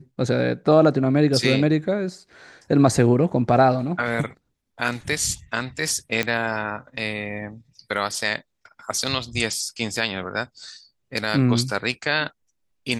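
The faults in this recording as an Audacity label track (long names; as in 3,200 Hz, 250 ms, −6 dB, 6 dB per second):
6.230000	6.230000	click −8 dBFS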